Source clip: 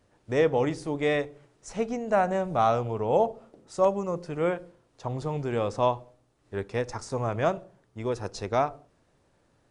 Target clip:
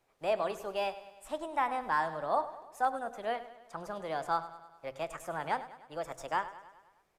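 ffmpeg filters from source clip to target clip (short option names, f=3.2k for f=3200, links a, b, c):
-filter_complex "[0:a]bandreject=f=49.88:t=h:w=4,bandreject=f=99.76:t=h:w=4,acrossover=split=290|2100[a][b][c];[a]equalizer=f=130:t=o:w=3:g=-10.5[d];[c]asoftclip=type=tanh:threshold=-38dB[e];[d][b][e]amix=inputs=3:normalize=0,aecho=1:1:137|274|411|548|685|822:0.178|0.101|0.0578|0.0329|0.0188|0.0107,asetrate=59535,aresample=44100,volume=-6.5dB"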